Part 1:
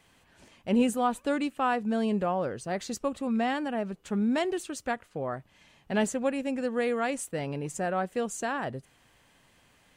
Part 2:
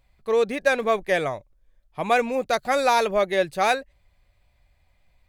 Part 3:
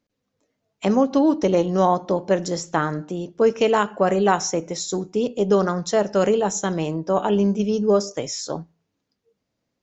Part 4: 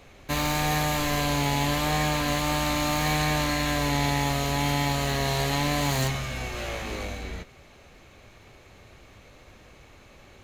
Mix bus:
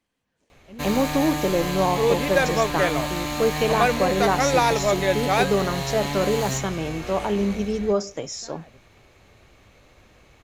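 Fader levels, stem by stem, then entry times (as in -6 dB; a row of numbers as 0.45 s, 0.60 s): -18.0 dB, -0.5 dB, -4.0 dB, -2.5 dB; 0.00 s, 1.70 s, 0.00 s, 0.50 s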